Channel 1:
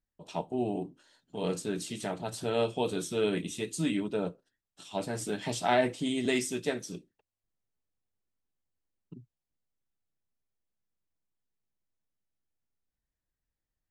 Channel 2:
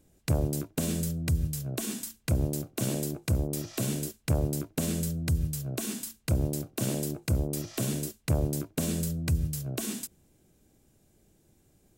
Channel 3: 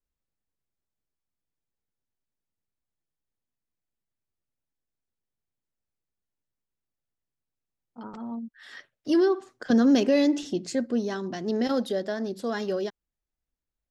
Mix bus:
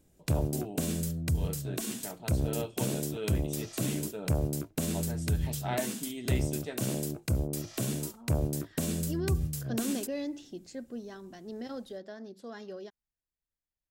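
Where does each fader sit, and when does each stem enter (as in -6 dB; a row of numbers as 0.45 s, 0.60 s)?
-8.5 dB, -2.0 dB, -14.0 dB; 0.00 s, 0.00 s, 0.00 s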